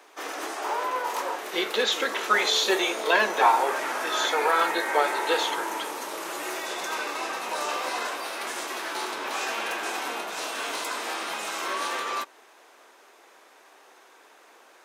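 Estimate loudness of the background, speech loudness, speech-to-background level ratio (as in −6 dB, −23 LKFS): −30.5 LKFS, −24.5 LKFS, 6.0 dB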